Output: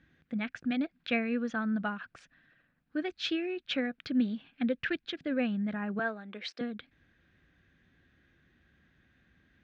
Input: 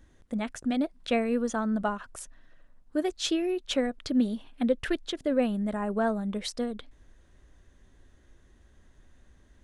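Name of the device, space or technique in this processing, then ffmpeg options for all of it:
guitar cabinet: -filter_complex "[0:a]asettb=1/sr,asplit=3[link_01][link_02][link_03];[link_01]atrim=end=5.994[link_04];[link_02]atrim=start=5.99:end=6.61,asetpts=PTS-STARTPTS,afade=type=in:duration=0.004:curve=qsin,afade=type=out:start_time=0.616:duration=0.004:curve=qsin,highpass=frequency=290:width=0.5412,highpass=frequency=290:width=1.3066[link_05];[link_03]atrim=start=6.606[link_06];[link_04][link_05]acrossfade=duration=0.004:curve1=hsin:curve2=qsin[link_07];[link_07][link_06]acrossfade=duration=0.004:curve1=qsin:curve2=hsin,highpass=100,equalizer=frequency=160:width_type=q:width=4:gain=6,equalizer=frequency=410:width_type=q:width=4:gain=-6,equalizer=frequency=600:width_type=q:width=4:gain=-7,equalizer=frequency=960:width_type=q:width=4:gain=-9,equalizer=frequency=1600:width_type=q:width=4:gain=7,equalizer=frequency=2400:width_type=q:width=4:gain=7,lowpass=frequency=4400:width=0.5412,lowpass=frequency=4400:width=1.3066,volume=-3dB"

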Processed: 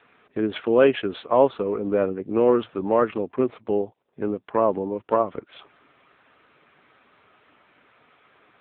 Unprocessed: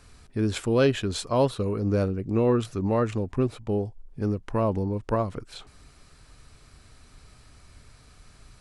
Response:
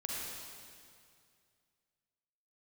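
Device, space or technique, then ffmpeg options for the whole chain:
telephone: -filter_complex "[0:a]asettb=1/sr,asplit=3[link_01][link_02][link_03];[link_01]atrim=end=4.504[link_04];[link_02]atrim=start=4.5:end=5.05,asetpts=PTS-STARTPTS,afade=type=in:duration=0.004:curve=qsin,afade=type=out:start_time=0.546:duration=0.004:curve=qsin,lowpass=7100[link_05];[link_03]atrim=start=5.046[link_06];[link_04][link_05]acrossfade=duration=0.004:curve1=hsin:curve2=qsin[link_07];[link_07][link_06]acrossfade=duration=0.004:curve1=qsin:curve2=hsin,highpass=340,lowpass=3400,volume=7dB" -ar 8000 -c:a libopencore_amrnb -b:a 6700

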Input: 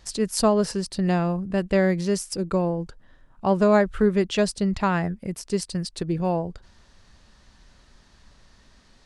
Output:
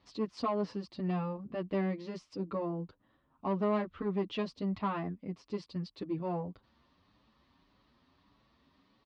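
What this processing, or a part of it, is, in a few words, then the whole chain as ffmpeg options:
barber-pole flanger into a guitar amplifier: -filter_complex "[0:a]asplit=2[link_01][link_02];[link_02]adelay=7.8,afreqshift=1.7[link_03];[link_01][link_03]amix=inputs=2:normalize=1,asoftclip=type=tanh:threshold=-18.5dB,highpass=89,equalizer=frequency=280:width_type=q:width=4:gain=9,equalizer=frequency=1100:width_type=q:width=4:gain=7,equalizer=frequency=1600:width_type=q:width=4:gain=-7,lowpass=frequency=4100:width=0.5412,lowpass=frequency=4100:width=1.3066,volume=-8dB"

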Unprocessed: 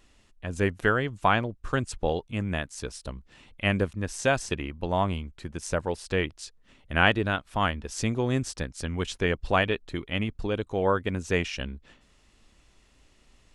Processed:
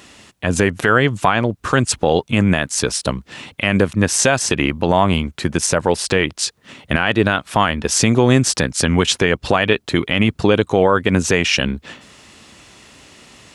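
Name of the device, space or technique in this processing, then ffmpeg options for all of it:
mastering chain: -af "highpass=47,highpass=120,equalizer=frequency=360:width_type=o:width=2.1:gain=-2,acompressor=threshold=-29dB:ratio=2.5,alimiter=level_in=21.5dB:limit=-1dB:release=50:level=0:latency=1,volume=-1dB"

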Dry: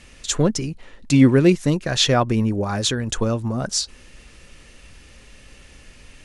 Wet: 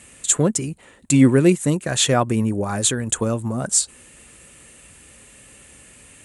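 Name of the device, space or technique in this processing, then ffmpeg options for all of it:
budget condenser microphone: -af "highpass=86,highshelf=frequency=6600:width_type=q:width=3:gain=7.5"

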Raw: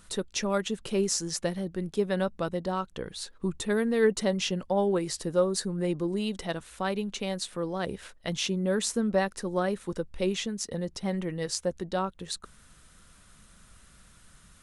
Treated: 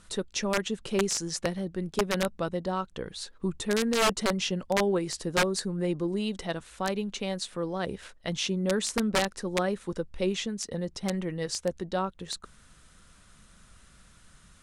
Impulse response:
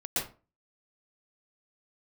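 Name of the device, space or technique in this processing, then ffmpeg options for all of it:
overflowing digital effects unit: -af "aeval=exprs='(mod(7.5*val(0)+1,2)-1)/7.5':channel_layout=same,lowpass=9600"

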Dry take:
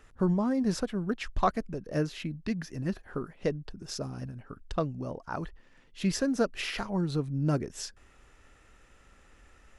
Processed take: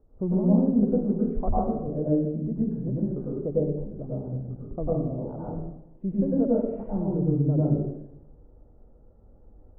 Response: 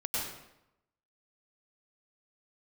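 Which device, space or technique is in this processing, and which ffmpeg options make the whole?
next room: -filter_complex "[0:a]lowpass=frequency=650:width=0.5412,lowpass=frequency=650:width=1.3066[link_01];[1:a]atrim=start_sample=2205[link_02];[link_01][link_02]afir=irnorm=-1:irlink=0"

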